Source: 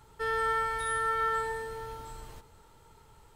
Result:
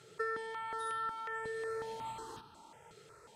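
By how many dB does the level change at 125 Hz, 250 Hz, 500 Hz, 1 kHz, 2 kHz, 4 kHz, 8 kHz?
-10.5 dB, -2.5 dB, -5.0 dB, -8.5 dB, -9.0 dB, -6.5 dB, -9.5 dB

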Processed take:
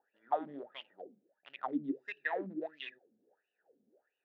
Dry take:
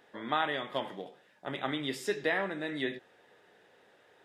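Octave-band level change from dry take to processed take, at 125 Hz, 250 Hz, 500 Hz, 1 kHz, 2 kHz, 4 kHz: -11.5 dB, -2.5 dB, -7.5 dB, -4.0 dB, -8.5 dB, -13.0 dB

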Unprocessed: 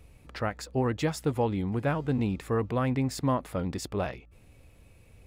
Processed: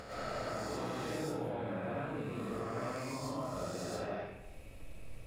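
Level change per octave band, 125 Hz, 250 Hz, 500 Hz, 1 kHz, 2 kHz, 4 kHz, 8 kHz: -13.5 dB, -11.0 dB, -7.5 dB, -7.0 dB, -6.0 dB, -5.5 dB, -6.5 dB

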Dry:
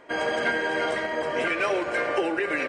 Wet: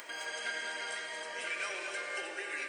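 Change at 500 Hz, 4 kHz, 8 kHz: -19.0 dB, -5.0 dB, +1.5 dB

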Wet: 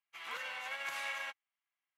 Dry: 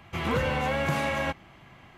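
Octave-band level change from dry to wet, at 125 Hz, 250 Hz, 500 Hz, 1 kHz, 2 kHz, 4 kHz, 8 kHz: under -40 dB, under -35 dB, -24.0 dB, -14.5 dB, -8.0 dB, -7.5 dB, -7.0 dB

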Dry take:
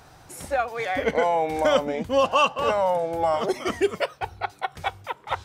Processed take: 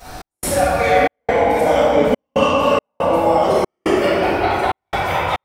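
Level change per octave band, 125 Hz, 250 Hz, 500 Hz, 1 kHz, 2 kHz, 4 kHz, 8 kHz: +12.0 dB, +10.5 dB, +8.0 dB, +7.0 dB, +7.5 dB, +5.0 dB, +11.0 dB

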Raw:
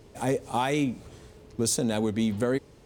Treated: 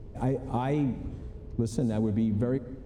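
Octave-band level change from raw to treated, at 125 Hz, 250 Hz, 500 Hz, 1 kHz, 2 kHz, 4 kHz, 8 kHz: +4.0 dB, -0.5 dB, -3.5 dB, -5.0 dB, -10.5 dB, -15.5 dB, -18.5 dB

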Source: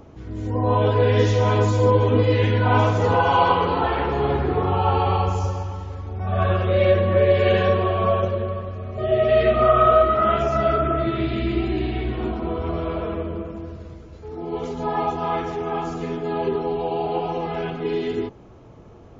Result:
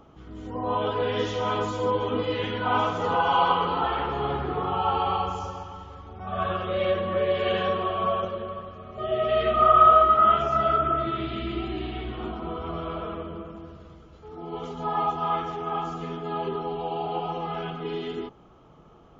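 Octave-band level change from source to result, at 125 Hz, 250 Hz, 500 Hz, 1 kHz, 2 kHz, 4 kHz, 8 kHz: -14.0 dB, -7.5 dB, -7.0 dB, -0.5 dB, -5.0 dB, -1.0 dB, no reading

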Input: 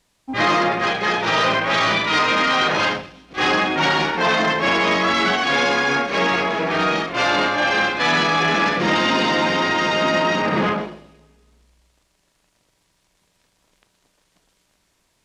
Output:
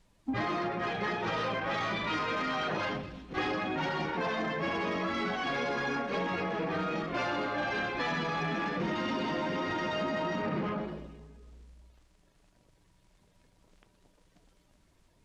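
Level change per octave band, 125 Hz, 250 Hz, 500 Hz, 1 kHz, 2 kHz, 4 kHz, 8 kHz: -9.0 dB, -10.5 dB, -12.0 dB, -14.0 dB, -16.0 dB, -18.0 dB, -19.5 dB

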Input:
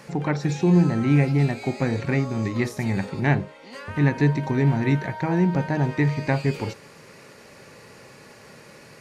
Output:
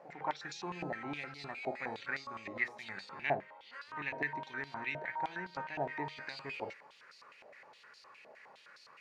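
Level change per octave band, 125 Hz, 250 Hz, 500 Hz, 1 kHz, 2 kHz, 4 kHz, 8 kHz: -31.5 dB, -25.5 dB, -15.5 dB, -8.0 dB, -7.5 dB, -8.5 dB, no reading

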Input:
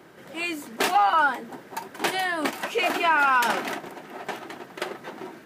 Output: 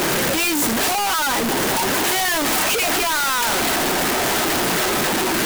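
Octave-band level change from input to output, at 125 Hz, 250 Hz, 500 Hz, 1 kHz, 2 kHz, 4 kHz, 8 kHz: +17.5 dB, +11.0 dB, +8.0 dB, +2.0 dB, +5.5 dB, +12.0 dB, +19.0 dB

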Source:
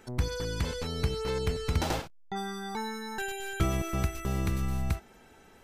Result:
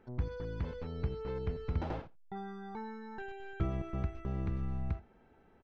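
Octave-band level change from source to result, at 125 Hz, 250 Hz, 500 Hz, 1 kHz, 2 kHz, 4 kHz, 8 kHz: -5.5 dB, -6.0 dB, -7.0 dB, -9.0 dB, -12.5 dB, -20.5 dB, under -30 dB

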